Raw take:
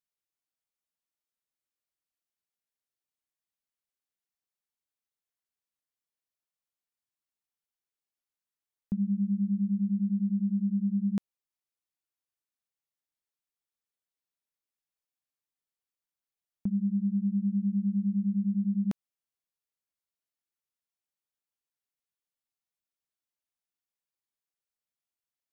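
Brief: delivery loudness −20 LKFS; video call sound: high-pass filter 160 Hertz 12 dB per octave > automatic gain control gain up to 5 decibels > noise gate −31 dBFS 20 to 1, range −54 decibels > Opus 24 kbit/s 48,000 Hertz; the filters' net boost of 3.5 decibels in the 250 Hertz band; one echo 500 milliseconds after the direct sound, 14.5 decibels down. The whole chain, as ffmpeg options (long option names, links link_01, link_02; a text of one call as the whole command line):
ffmpeg -i in.wav -af "highpass=160,equalizer=frequency=250:width_type=o:gain=7,aecho=1:1:500:0.188,dynaudnorm=maxgain=5dB,agate=range=-54dB:threshold=-31dB:ratio=20,volume=3dB" -ar 48000 -c:a libopus -b:a 24k out.opus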